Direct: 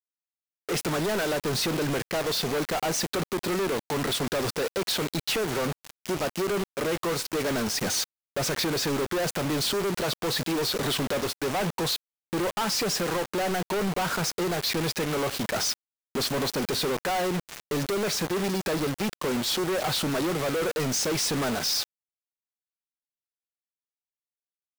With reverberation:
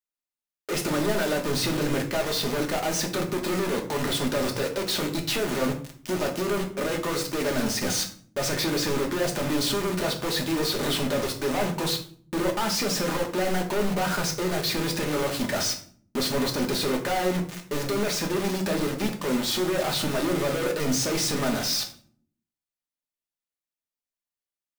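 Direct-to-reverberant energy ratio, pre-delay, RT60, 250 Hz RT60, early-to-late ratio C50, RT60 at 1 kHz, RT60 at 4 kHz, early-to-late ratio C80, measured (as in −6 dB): 2.0 dB, 3 ms, 0.50 s, 0.85 s, 10.5 dB, 0.45 s, 0.35 s, 15.0 dB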